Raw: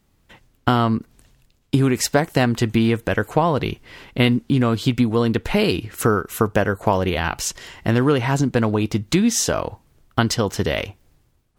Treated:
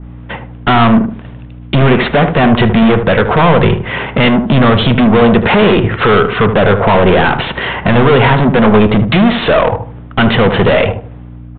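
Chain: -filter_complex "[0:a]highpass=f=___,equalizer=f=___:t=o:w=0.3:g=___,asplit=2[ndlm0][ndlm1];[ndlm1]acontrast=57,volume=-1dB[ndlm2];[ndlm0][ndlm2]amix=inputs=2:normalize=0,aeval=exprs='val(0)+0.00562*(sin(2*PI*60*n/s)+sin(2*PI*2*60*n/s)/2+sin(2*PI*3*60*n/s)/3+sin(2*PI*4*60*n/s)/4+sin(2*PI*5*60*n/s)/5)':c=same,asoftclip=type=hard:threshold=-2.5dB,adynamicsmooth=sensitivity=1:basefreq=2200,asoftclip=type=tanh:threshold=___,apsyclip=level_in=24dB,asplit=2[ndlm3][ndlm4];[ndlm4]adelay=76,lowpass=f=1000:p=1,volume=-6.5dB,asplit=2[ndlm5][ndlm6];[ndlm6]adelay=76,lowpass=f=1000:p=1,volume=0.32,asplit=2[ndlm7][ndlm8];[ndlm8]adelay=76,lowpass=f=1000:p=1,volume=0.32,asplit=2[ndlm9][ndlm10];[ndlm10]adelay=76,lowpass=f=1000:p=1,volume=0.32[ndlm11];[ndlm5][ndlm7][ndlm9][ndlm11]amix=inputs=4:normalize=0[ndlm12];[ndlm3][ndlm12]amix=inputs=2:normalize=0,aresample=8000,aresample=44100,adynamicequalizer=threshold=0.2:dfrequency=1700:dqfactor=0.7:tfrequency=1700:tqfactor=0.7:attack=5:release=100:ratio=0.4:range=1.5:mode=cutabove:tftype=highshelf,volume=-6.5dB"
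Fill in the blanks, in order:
150, 300, -14, -18.5dB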